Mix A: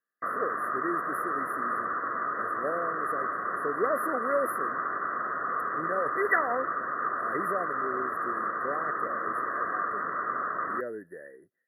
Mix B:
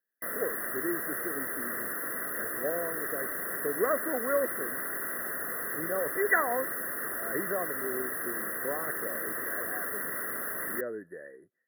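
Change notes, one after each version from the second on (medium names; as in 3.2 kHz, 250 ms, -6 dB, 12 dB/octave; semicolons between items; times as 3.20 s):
background: remove resonant low-pass 1.2 kHz, resonance Q 7.9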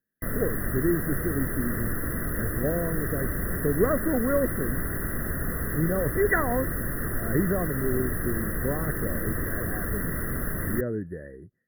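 master: remove high-pass 540 Hz 12 dB/octave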